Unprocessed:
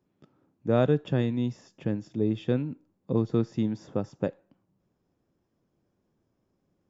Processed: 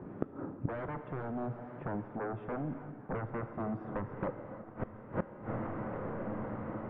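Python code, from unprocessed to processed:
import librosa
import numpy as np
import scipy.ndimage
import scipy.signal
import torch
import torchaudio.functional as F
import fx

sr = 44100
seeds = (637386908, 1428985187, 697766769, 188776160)

p1 = fx.fold_sine(x, sr, drive_db=19, ceiling_db=-9.5)
p2 = x + F.gain(torch.from_numpy(p1), -4.0).numpy()
p3 = fx.quant_companded(p2, sr, bits=8)
p4 = p3 + fx.echo_diffused(p3, sr, ms=977, feedback_pct=50, wet_db=-15.5, dry=0)
p5 = fx.gate_flip(p4, sr, shuts_db=-25.0, range_db=-26)
p6 = fx.low_shelf(p5, sr, hz=150.0, db=-3.0)
p7 = fx.rev_gated(p6, sr, seeds[0], gate_ms=360, shape='flat', drr_db=9.0)
p8 = fx.rider(p7, sr, range_db=4, speed_s=0.5)
p9 = scipy.signal.sosfilt(scipy.signal.butter(4, 1600.0, 'lowpass', fs=sr, output='sos'), p8)
p10 = fx.band_squash(p9, sr, depth_pct=70, at=(3.6, 4.27))
y = F.gain(torch.from_numpy(p10), 5.5).numpy()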